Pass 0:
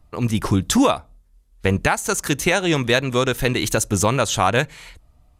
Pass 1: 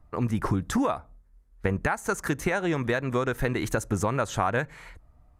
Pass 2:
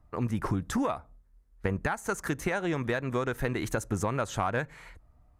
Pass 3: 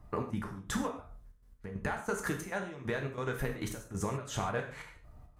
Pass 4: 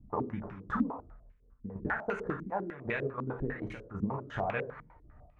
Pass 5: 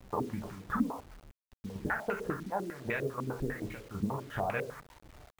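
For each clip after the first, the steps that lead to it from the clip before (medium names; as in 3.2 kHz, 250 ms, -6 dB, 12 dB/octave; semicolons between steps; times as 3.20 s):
compression, threshold -19 dBFS, peak gain reduction 8 dB; resonant high shelf 2.3 kHz -8.5 dB, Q 1.5; trim -2.5 dB
single-diode clipper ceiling -11.5 dBFS; trim -3 dB
compression 4:1, threshold -40 dBFS, peak gain reduction 13.5 dB; trance gate "xx.x..xx.x" 137 bpm -12 dB; gated-style reverb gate 170 ms falling, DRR 2 dB; trim +6 dB
step-sequenced low-pass 10 Hz 240–2400 Hz; trim -2.5 dB
bit crusher 9-bit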